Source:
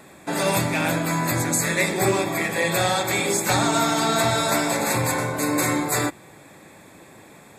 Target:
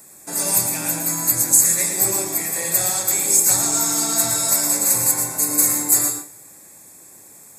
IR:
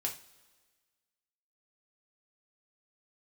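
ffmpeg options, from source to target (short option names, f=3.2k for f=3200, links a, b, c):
-filter_complex "[0:a]aexciter=amount=9.3:drive=4.9:freq=5k,asplit=2[a][b];[1:a]atrim=start_sample=2205,asetrate=48510,aresample=44100,adelay=112[c];[b][c]afir=irnorm=-1:irlink=0,volume=-7dB[d];[a][d]amix=inputs=2:normalize=0,volume=-8.5dB"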